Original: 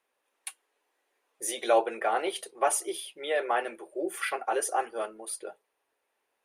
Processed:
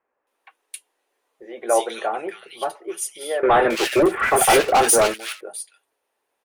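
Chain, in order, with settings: 2.12–2.75 s: graphic EQ 125/500/1000/2000/8000 Hz +11/-4/-3/-6/-8 dB; 3.43–5.14 s: waveshaping leveller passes 5; bands offset in time lows, highs 270 ms, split 2 kHz; trim +4 dB

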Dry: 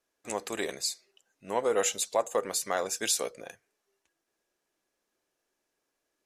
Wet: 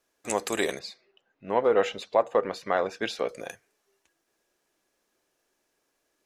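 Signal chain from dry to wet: 0.79–3.29 s: distance through air 330 m; trim +6 dB

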